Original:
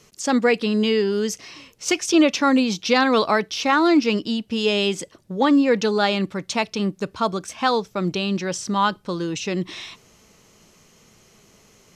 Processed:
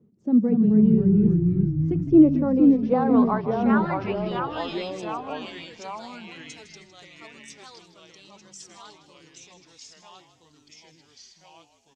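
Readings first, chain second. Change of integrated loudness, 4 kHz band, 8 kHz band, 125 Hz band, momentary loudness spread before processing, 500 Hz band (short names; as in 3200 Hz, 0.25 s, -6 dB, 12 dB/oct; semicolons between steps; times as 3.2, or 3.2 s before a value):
+0.5 dB, -16.5 dB, -17.0 dB, +6.0 dB, 10 LU, -6.5 dB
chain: bin magnitudes rounded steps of 15 dB; tilt shelf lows +7.5 dB; band-pass sweep 220 Hz -> 7400 Hz, 1.84–5.35; echoes that change speed 0.208 s, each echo -2 st, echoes 3; frequency-shifting echo 0.158 s, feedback 40%, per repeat -56 Hz, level -12.5 dB; gain -2.5 dB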